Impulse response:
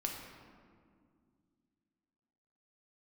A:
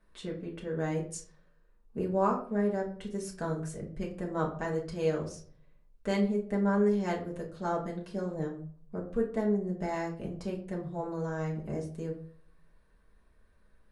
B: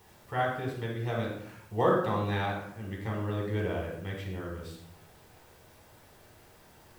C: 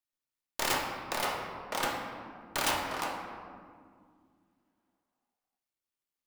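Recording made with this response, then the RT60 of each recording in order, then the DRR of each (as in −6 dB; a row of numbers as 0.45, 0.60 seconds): C; 0.50, 0.70, 2.1 seconds; −3.5, −2.0, 0.0 decibels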